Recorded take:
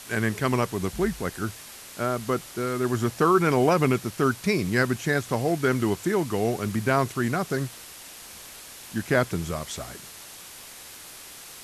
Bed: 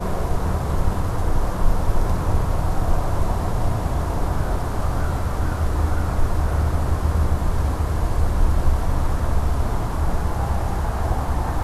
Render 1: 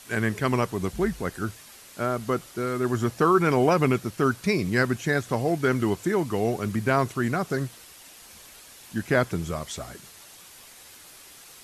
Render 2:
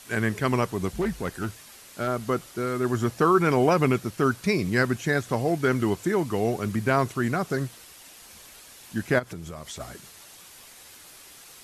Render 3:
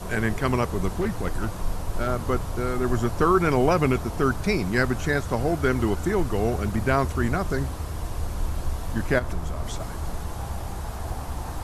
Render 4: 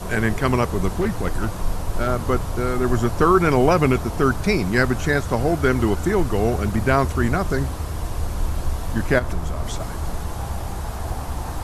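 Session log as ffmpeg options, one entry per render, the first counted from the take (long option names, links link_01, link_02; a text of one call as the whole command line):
ffmpeg -i in.wav -af "afftdn=noise_reduction=6:noise_floor=-44" out.wav
ffmpeg -i in.wav -filter_complex "[0:a]asettb=1/sr,asplit=3[link_01][link_02][link_03];[link_01]atrim=end=1.014[link_04];[link_02]atrim=start=1.01:end=2.08,asetpts=PTS-STARTPTS,afade=type=in:duration=0.004:curve=qsin,afade=type=out:start_time=1.066:duration=0.004:curve=qsin,asoftclip=type=hard:threshold=-22dB[link_05];[link_03]atrim=start=2.076[link_06];[link_04][link_05]acrossfade=duration=0.004:curve1=hsin:curve2=qsin[link_07];[link_07][link_06]acrossfade=duration=0.004:curve1=qsin:curve2=hsin,asplit=3[link_08][link_09][link_10];[link_08]afade=type=out:start_time=9.18:duration=0.02[link_11];[link_09]acompressor=threshold=-34dB:ratio=4:attack=3.2:release=140:knee=1:detection=peak,afade=type=in:start_time=9.18:duration=0.02,afade=type=out:start_time=9.79:duration=0.02[link_12];[link_10]afade=type=in:start_time=9.79:duration=0.02[link_13];[link_11][link_12][link_13]amix=inputs=3:normalize=0" out.wav
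ffmpeg -i in.wav -i bed.wav -filter_complex "[1:a]volume=-9.5dB[link_01];[0:a][link_01]amix=inputs=2:normalize=0" out.wav
ffmpeg -i in.wav -af "volume=4dB" out.wav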